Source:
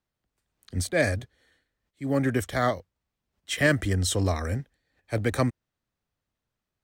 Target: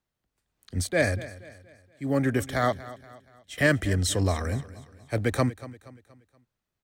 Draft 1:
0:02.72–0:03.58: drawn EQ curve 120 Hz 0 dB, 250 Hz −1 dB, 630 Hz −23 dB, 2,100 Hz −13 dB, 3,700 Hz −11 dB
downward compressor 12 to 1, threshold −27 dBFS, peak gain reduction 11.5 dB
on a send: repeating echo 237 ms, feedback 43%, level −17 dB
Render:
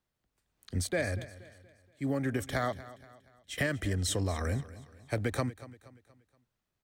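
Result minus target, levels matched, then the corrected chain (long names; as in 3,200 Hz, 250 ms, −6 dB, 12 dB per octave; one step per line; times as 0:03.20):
downward compressor: peak gain reduction +11.5 dB
0:02.72–0:03.58: drawn EQ curve 120 Hz 0 dB, 250 Hz −1 dB, 630 Hz −23 dB, 2,100 Hz −13 dB, 3,700 Hz −11 dB
on a send: repeating echo 237 ms, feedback 43%, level −17 dB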